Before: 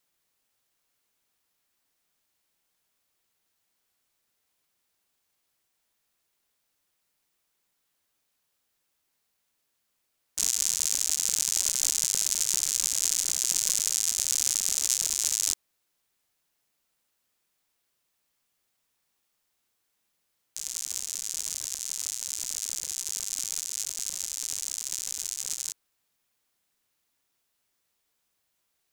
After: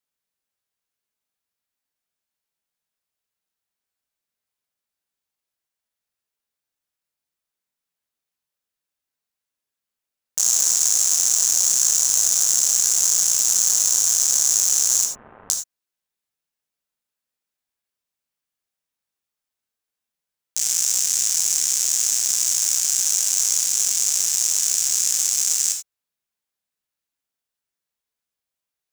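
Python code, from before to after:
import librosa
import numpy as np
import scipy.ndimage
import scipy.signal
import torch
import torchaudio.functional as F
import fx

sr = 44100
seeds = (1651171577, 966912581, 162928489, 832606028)

y = fx.leveller(x, sr, passes=5)
y = fx.gaussian_blur(y, sr, sigma=6.0, at=(15.05, 15.5))
y = fx.rev_gated(y, sr, seeds[0], gate_ms=110, shape='flat', drr_db=2.5)
y = y * librosa.db_to_amplitude(-1.5)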